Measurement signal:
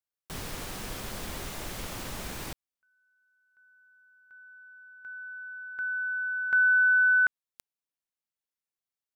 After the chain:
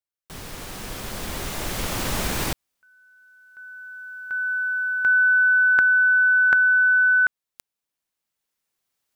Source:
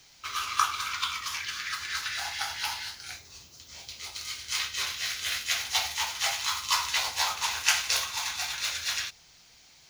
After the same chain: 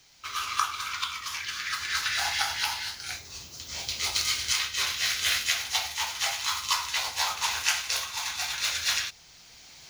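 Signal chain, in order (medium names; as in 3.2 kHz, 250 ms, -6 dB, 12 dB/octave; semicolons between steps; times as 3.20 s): recorder AGC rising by 6.9 dB/s, up to +29 dB; trim -2.5 dB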